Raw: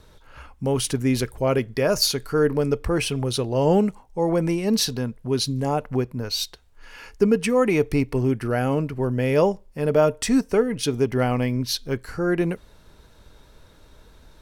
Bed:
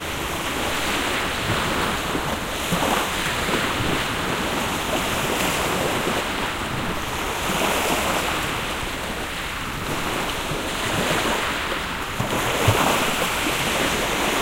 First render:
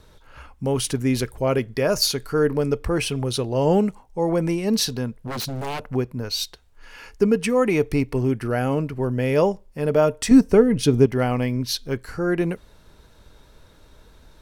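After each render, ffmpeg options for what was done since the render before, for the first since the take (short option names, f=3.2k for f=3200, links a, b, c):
-filter_complex "[0:a]asettb=1/sr,asplit=3[a][b][c];[a]atrim=end=5.274[d];[b]atrim=start=5.27:end=5.8,asetpts=PTS-STARTPTS,afade=t=in:d=0.004:c=qsin,afade=t=out:st=0.526:d=0.004:c=qsin,aeval=exprs='0.0668*(abs(mod(val(0)/0.0668+3,4)-2)-1)':c=same[e];[c]atrim=start=5.796[f];[d][e]acrossfade=d=0.004:c1=hsin:c2=qsin[g];[g][f]acrossfade=d=0.004:c1=qsin:c2=hsin,asettb=1/sr,asplit=3[h][i][j];[h]atrim=end=10.314[k];[i]atrim=start=10.31:end=11.06,asetpts=PTS-STARTPTS,afade=t=in:d=0.004:c=qsin,afade=t=out:st=0.746:d=0.004:c=qsin,lowshelf=f=430:g=9.5[l];[j]atrim=start=11.056[m];[k][l]acrossfade=d=0.004:c1=hsin:c2=qsin[n];[n][m]acrossfade=d=0.004:c1=qsin:c2=hsin"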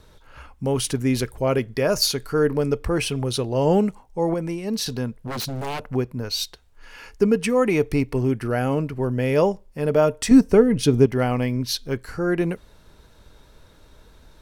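-filter_complex "[0:a]asplit=3[a][b][c];[a]atrim=end=4.342[d];[b]atrim=start=4.338:end=4.862,asetpts=PTS-STARTPTS,volume=-5dB[e];[c]atrim=start=4.858[f];[d][e]acrossfade=d=0.004:c1=hsin:c2=hsin[g];[g][f]acrossfade=d=0.004:c1=hsin:c2=hsin"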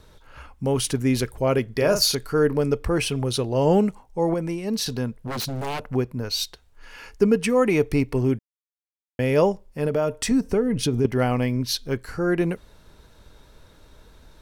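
-filter_complex "[0:a]asettb=1/sr,asplit=3[a][b][c];[a]atrim=end=1.724[d];[b]atrim=start=1.72:end=2.15,asetpts=PTS-STARTPTS,afade=t=in:d=0.004:c=qsin,afade=t=out:st=0.426:d=0.004:c=qsin,asplit=2[e][f];[f]adelay=41,volume=-7dB[g];[e][g]amix=inputs=2:normalize=0,atrim=end_sample=18963[h];[c]atrim=start=2.146[i];[d][h]acrossfade=d=0.004:c1=hsin:c2=qsin[j];[j][i]acrossfade=d=0.004:c1=qsin:c2=hsin,asettb=1/sr,asplit=3[k][l][m];[k]atrim=end=9.874[n];[l]atrim=start=9.87:end=11.05,asetpts=PTS-STARTPTS,afade=t=in:d=0.004:c=qsin,afade=t=out:st=1.176:d=0.004:c=qsin,acompressor=threshold=-20dB:ratio=2.5:attack=3.2:release=140:knee=1:detection=peak[o];[m]atrim=start=11.046[p];[n][o]acrossfade=d=0.004:c1=hsin:c2=qsin[q];[q][p]acrossfade=d=0.004:c1=qsin:c2=hsin,asplit=3[r][s][t];[r]atrim=end=8.39,asetpts=PTS-STARTPTS,afade=t=out:st=8.386:d=0.004:c=hsin[u];[s]atrim=start=8.39:end=9.19,asetpts=PTS-STARTPTS,volume=0[v];[t]atrim=start=9.19,asetpts=PTS-STARTPTS,afade=t=in:d=0.004:c=hsin[w];[u][v][w]concat=n=3:v=0:a=1"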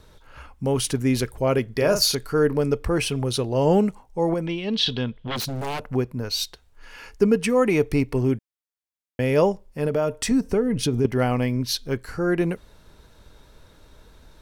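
-filter_complex "[0:a]asettb=1/sr,asplit=3[a][b][c];[a]atrim=end=4.464[d];[b]atrim=start=4.46:end=5.36,asetpts=PTS-STARTPTS,afade=t=in:d=0.004:c=qsin,afade=t=out:st=0.896:d=0.004:c=qsin,lowpass=f=3.3k:t=q:w=10[e];[c]atrim=start=5.356[f];[d][e]acrossfade=d=0.004:c1=hsin:c2=qsin[g];[g][f]acrossfade=d=0.004:c1=qsin:c2=hsin"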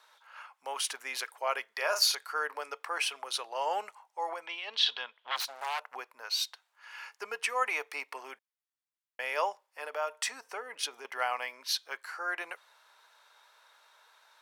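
-af "highpass=f=840:w=0.5412,highpass=f=840:w=1.3066,highshelf=f=3.4k:g=-7.5"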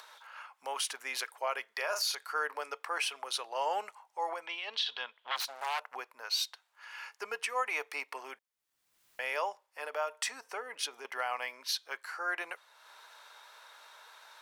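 -af "alimiter=limit=-22dB:level=0:latency=1:release=184,acompressor=mode=upward:threshold=-46dB:ratio=2.5"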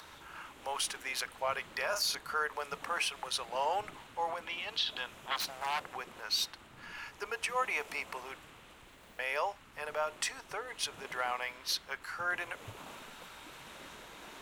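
-filter_complex "[1:a]volume=-30dB[a];[0:a][a]amix=inputs=2:normalize=0"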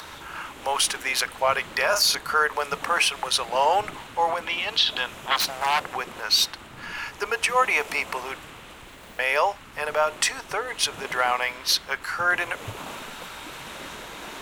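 -af "volume=12dB"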